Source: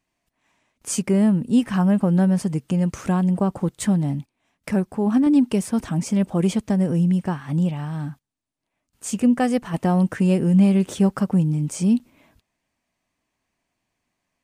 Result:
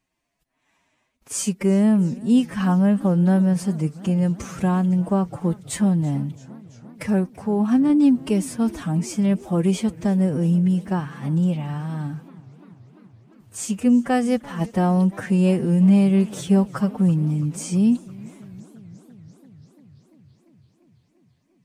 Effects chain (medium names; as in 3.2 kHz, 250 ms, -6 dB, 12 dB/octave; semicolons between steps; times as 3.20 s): time stretch by phase-locked vocoder 1.5×; modulated delay 339 ms, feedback 74%, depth 175 cents, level -22 dB